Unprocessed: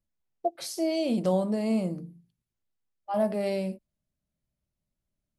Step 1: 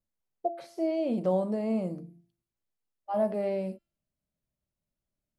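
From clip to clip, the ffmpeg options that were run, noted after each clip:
ffmpeg -i in.wav -filter_complex "[0:a]acrossover=split=2600[link_01][link_02];[link_02]acompressor=threshold=-55dB:ratio=4:attack=1:release=60[link_03];[link_01][link_03]amix=inputs=2:normalize=0,equalizer=frequency=550:width_type=o:width=2.3:gain=4.5,bandreject=frequency=340.9:width_type=h:width=4,bandreject=frequency=681.8:width_type=h:width=4,bandreject=frequency=1022.7:width_type=h:width=4,bandreject=frequency=1363.6:width_type=h:width=4,bandreject=frequency=1704.5:width_type=h:width=4,bandreject=frequency=2045.4:width_type=h:width=4,bandreject=frequency=2386.3:width_type=h:width=4,bandreject=frequency=2727.2:width_type=h:width=4,bandreject=frequency=3068.1:width_type=h:width=4,bandreject=frequency=3409:width_type=h:width=4,bandreject=frequency=3749.9:width_type=h:width=4,bandreject=frequency=4090.8:width_type=h:width=4,bandreject=frequency=4431.7:width_type=h:width=4,bandreject=frequency=4772.6:width_type=h:width=4,bandreject=frequency=5113.5:width_type=h:width=4,bandreject=frequency=5454.4:width_type=h:width=4,bandreject=frequency=5795.3:width_type=h:width=4,bandreject=frequency=6136.2:width_type=h:width=4,bandreject=frequency=6477.1:width_type=h:width=4,bandreject=frequency=6818:width_type=h:width=4,bandreject=frequency=7158.9:width_type=h:width=4,bandreject=frequency=7499.8:width_type=h:width=4,volume=-5dB" out.wav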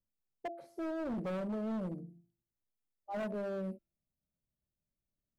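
ffmpeg -i in.wav -af "equalizer=frequency=3600:width=0.32:gain=-15,volume=32dB,asoftclip=hard,volume=-32dB,volume=-2.5dB" out.wav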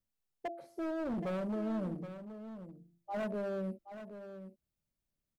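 ffmpeg -i in.wav -af "aecho=1:1:773:0.282,volume=1dB" out.wav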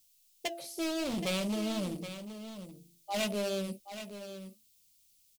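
ffmpeg -i in.wav -filter_complex "[0:a]flanger=delay=2:depth=5.6:regen=-84:speed=0.56:shape=triangular,aexciter=amount=5.3:drive=9.2:freq=2400,asplit=2[link_01][link_02];[link_02]adelay=15,volume=-13dB[link_03];[link_01][link_03]amix=inputs=2:normalize=0,volume=6.5dB" out.wav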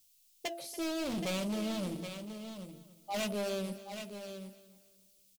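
ffmpeg -i in.wav -af "asoftclip=type=tanh:threshold=-29dB,aecho=1:1:285|570|855:0.158|0.0507|0.0162" out.wav

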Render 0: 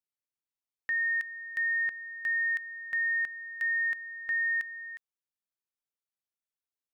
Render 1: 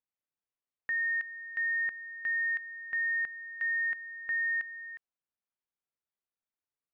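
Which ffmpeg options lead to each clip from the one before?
ffmpeg -i in.wav -af "lowpass=2200" out.wav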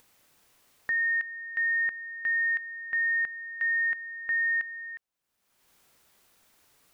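ffmpeg -i in.wav -af "acompressor=mode=upward:threshold=-46dB:ratio=2.5,volume=4dB" out.wav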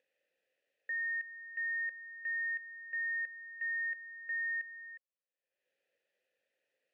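ffmpeg -i in.wav -filter_complex "[0:a]asplit=3[link_01][link_02][link_03];[link_01]bandpass=frequency=530:width_type=q:width=8,volume=0dB[link_04];[link_02]bandpass=frequency=1840:width_type=q:width=8,volume=-6dB[link_05];[link_03]bandpass=frequency=2480:width_type=q:width=8,volume=-9dB[link_06];[link_04][link_05][link_06]amix=inputs=3:normalize=0,volume=-3.5dB" out.wav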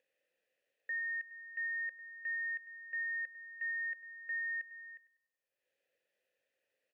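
ffmpeg -i in.wav -filter_complex "[0:a]asplit=2[link_01][link_02];[link_02]adelay=98,lowpass=frequency=1700:poles=1,volume=-12dB,asplit=2[link_03][link_04];[link_04]adelay=98,lowpass=frequency=1700:poles=1,volume=0.51,asplit=2[link_05][link_06];[link_06]adelay=98,lowpass=frequency=1700:poles=1,volume=0.51,asplit=2[link_07][link_08];[link_08]adelay=98,lowpass=frequency=1700:poles=1,volume=0.51,asplit=2[link_09][link_10];[link_10]adelay=98,lowpass=frequency=1700:poles=1,volume=0.51[link_11];[link_01][link_03][link_05][link_07][link_09][link_11]amix=inputs=6:normalize=0,volume=-1dB" out.wav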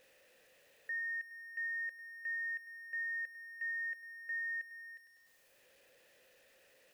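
ffmpeg -i in.wav -af "aeval=exprs='val(0)+0.5*0.00112*sgn(val(0))':channel_layout=same,volume=-1.5dB" out.wav

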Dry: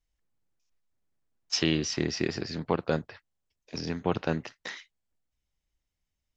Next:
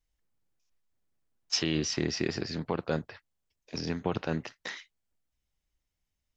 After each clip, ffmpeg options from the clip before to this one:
ffmpeg -i in.wav -af "alimiter=limit=-16dB:level=0:latency=1:release=36" out.wav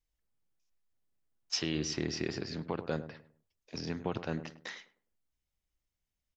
ffmpeg -i in.wav -filter_complex "[0:a]asplit=2[link_01][link_02];[link_02]adelay=103,lowpass=frequency=800:poles=1,volume=-10.5dB,asplit=2[link_03][link_04];[link_04]adelay=103,lowpass=frequency=800:poles=1,volume=0.35,asplit=2[link_05][link_06];[link_06]adelay=103,lowpass=frequency=800:poles=1,volume=0.35,asplit=2[link_07][link_08];[link_08]adelay=103,lowpass=frequency=800:poles=1,volume=0.35[link_09];[link_01][link_03][link_05][link_07][link_09]amix=inputs=5:normalize=0,volume=-4.5dB" out.wav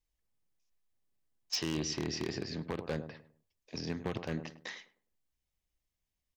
ffmpeg -i in.wav -af "aeval=exprs='0.0562*(abs(mod(val(0)/0.0562+3,4)-2)-1)':channel_layout=same,bandreject=frequency=1400:width=9.4" out.wav

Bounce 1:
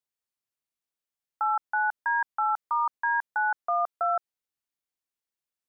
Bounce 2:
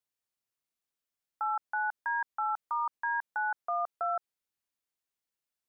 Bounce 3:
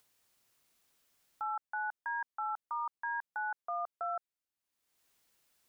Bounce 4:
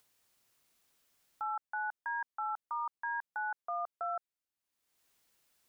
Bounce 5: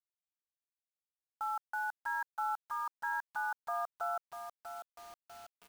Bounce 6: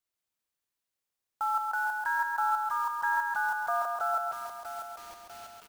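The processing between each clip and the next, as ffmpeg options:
ffmpeg -i in.wav -af "alimiter=level_in=0.5dB:limit=-24dB:level=0:latency=1,volume=-0.5dB" out.wav
ffmpeg -i in.wav -af "acompressor=mode=upward:threshold=-50dB:ratio=2.5,volume=-5dB" out.wav
ffmpeg -i in.wav -af anull out.wav
ffmpeg -i in.wav -filter_complex "[0:a]asplit=2[link_01][link_02];[link_02]adelay=644,lowpass=frequency=1100:poles=1,volume=-7dB,asplit=2[link_03][link_04];[link_04]adelay=644,lowpass=frequency=1100:poles=1,volume=0.53,asplit=2[link_05][link_06];[link_06]adelay=644,lowpass=frequency=1100:poles=1,volume=0.53,asplit=2[link_07][link_08];[link_08]adelay=644,lowpass=frequency=1100:poles=1,volume=0.53,asplit=2[link_09][link_10];[link_10]adelay=644,lowpass=frequency=1100:poles=1,volume=0.53,asplit=2[link_11][link_12];[link_12]adelay=644,lowpass=frequency=1100:poles=1,volume=0.53[link_13];[link_01][link_03][link_05][link_07][link_09][link_11][link_13]amix=inputs=7:normalize=0,acrusher=bits=8:mix=0:aa=0.000001" out.wav
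ffmpeg -i in.wav -af "aecho=1:1:137|274|411|548|685:0.631|0.252|0.101|0.0404|0.0162,volume=6.5dB" out.wav

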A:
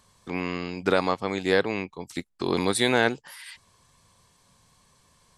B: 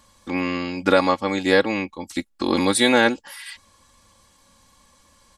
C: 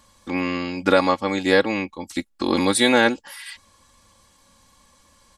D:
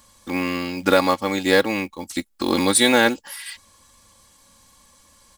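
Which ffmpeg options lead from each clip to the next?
ffmpeg -i in.wav -af "aecho=1:1:3.6:0.75,volume=3.5dB" out.wav
ffmpeg -i in.wav -af anull out.wav
ffmpeg -i in.wav -af "crystalizer=i=1:c=0,acrusher=bits=5:mode=log:mix=0:aa=0.000001" out.wav

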